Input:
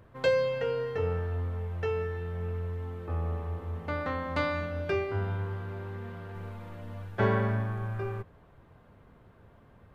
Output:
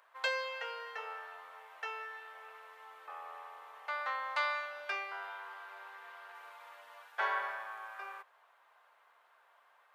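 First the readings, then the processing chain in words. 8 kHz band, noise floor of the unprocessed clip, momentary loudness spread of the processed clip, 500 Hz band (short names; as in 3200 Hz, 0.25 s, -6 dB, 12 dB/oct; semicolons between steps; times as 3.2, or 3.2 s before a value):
n/a, -58 dBFS, 18 LU, -16.0 dB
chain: HPF 810 Hz 24 dB/oct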